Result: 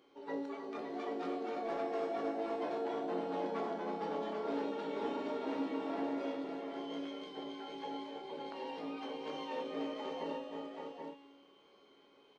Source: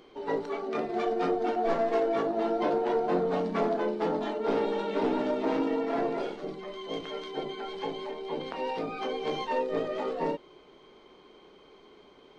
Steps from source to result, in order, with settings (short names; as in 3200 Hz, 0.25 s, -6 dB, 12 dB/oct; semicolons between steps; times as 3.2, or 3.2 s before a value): HPF 180 Hz 6 dB/oct; resonator 280 Hz, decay 1.2 s, mix 90%; tapped delay 0.313/0.567/0.781 s -10.5/-7.5/-5.5 dB; gain +7 dB